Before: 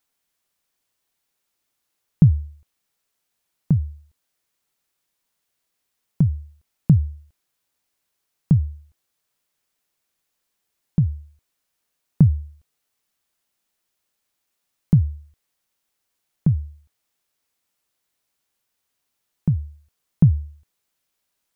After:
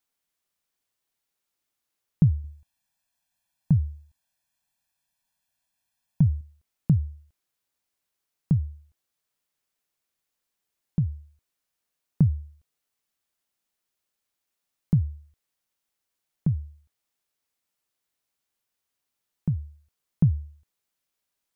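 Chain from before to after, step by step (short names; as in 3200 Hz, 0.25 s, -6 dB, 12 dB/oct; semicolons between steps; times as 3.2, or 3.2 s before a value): 2.44–6.41 comb 1.2 ms, depth 82%; gain -6 dB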